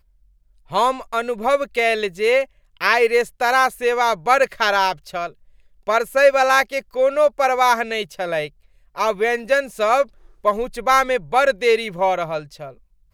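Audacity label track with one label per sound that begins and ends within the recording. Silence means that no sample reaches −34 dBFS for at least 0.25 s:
0.710000	2.450000	sound
2.810000	5.300000	sound
5.870000	8.480000	sound
8.960000	10.040000	sound
10.450000	12.710000	sound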